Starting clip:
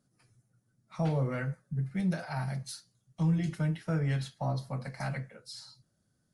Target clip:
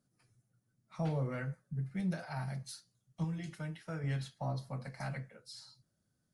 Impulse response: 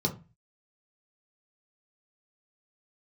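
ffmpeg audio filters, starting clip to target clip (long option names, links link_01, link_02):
-filter_complex "[0:a]asettb=1/sr,asplit=3[link_01][link_02][link_03];[link_01]atrim=end=3.244[link_04];[link_02]atrim=start=3.24:end=4.04,asetpts=PTS-STARTPTS,afade=type=in:duration=0.004:curve=qsin,afade=type=out:start_time=0.796:duration=0.004:curve=qsin,lowshelf=frequency=460:gain=-7.5[link_05];[link_03]atrim=start=4.036[link_06];[link_04][link_05]acrossfade=duration=0.004:curve1=hsin:curve2=qsin[link_07];[link_07][link_06]acrossfade=duration=0.004:curve1=qsin:curve2=hsin,volume=-5dB"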